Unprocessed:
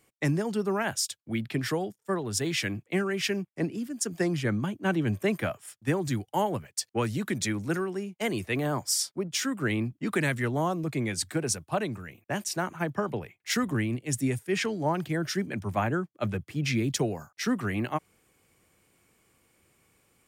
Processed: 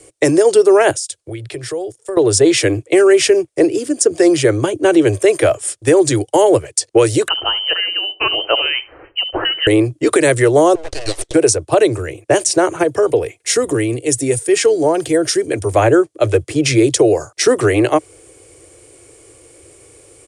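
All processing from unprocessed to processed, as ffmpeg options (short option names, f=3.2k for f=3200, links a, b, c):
-filter_complex "[0:a]asettb=1/sr,asplit=3[a][b][c];[a]atrim=end=0.914[d];[b]atrim=start=0.91:end=2.17,asetpts=PTS-STARTPTS,afade=t=in:d=0.004:c=qsin,afade=t=out:st=1.256:d=0.004:c=qsin,equalizer=f=270:t=o:w=0.38:g=-13.5,acompressor=threshold=-45dB:ratio=5:attack=3.2:release=140:knee=1:detection=peak[e];[c]atrim=start=2.166[f];[d][e]acrossfade=d=0.004:c1=hsin:c2=qsin[g];[g][f]acrossfade=d=0.004:c1=qsin:c2=hsin,asettb=1/sr,asplit=3[h][i][j];[h]atrim=end=7.284[k];[i]atrim=start=7.28:end=9.67,asetpts=PTS-STARTPTS,afade=t=in:d=0.004:c=qsin,afade=t=out:st=2.386:d=0.004:c=qsin,lowpass=f=2.7k:t=q:w=0.5098,lowpass=f=2.7k:t=q:w=0.6013,lowpass=f=2.7k:t=q:w=0.9,lowpass=f=2.7k:t=q:w=2.563,afreqshift=-3200,asplit=2[l][m];[m]adelay=70,lowpass=f=820:p=1,volume=-12.5dB,asplit=2[n][o];[o]adelay=70,lowpass=f=820:p=1,volume=0.33,asplit=2[p][q];[q]adelay=70,lowpass=f=820:p=1,volume=0.33[r];[l][n][p][r]amix=inputs=4:normalize=0,atrim=end_sample=105399[s];[j]atrim=start=9.666[t];[k][s]acrossfade=d=0.004:c1=hsin:c2=qsin[u];[u][t]acrossfade=d=0.004:c1=qsin:c2=hsin,asettb=1/sr,asplit=3[v][w][x];[v]atrim=end=10.754[y];[w]atrim=start=10.75:end=11.34,asetpts=PTS-STARTPTS,afade=t=in:d=0.004:c=qsin,afade=t=out:st=0.586:d=0.004:c=qsin,highpass=740,lowpass=2.8k,aeval=exprs='abs(val(0))':c=same[z];[x]atrim=start=11.336[aa];[y][z]acrossfade=d=0.004:c1=hsin:c2=qsin[ab];[ab][aa]acrossfade=d=0.004:c1=qsin:c2=hsin,asettb=1/sr,asplit=3[ac][ad][ae];[ac]atrim=end=12.834[af];[ad]atrim=start=12.83:end=15.74,asetpts=PTS-STARTPTS,afade=t=in:d=0.004:c=qsin,afade=t=out:st=2.906:d=0.004:c=qsin,highshelf=f=9k:g=9.5,aecho=1:1:4.3:0.32,atrim=end_sample=128331,acompressor=threshold=-42dB:ratio=1.5:attack=3.2:release=140:knee=1:detection=peak[ag];[ae]atrim=start=15.736[ah];[af][ag]acrossfade=d=0.004:c1=hsin:c2=qsin[ai];[ai][ah]acrossfade=d=0.004:c1=qsin:c2=hsin,firequalizer=gain_entry='entry(120,0);entry(200,-27);entry(310,5);entry(490,7);entry(840,-6);entry(1500,-7);entry(9300,7);entry(14000,-28)':delay=0.05:min_phase=1,acrossover=split=390|1500|6600[aj][ak][al][am];[aj]acompressor=threshold=-38dB:ratio=4[an];[ak]acompressor=threshold=-28dB:ratio=4[ao];[al]acompressor=threshold=-39dB:ratio=4[ap];[am]acompressor=threshold=-41dB:ratio=4[aq];[an][ao][ap][aq]amix=inputs=4:normalize=0,alimiter=level_in=21.5dB:limit=-1dB:release=50:level=0:latency=1,volume=-1dB"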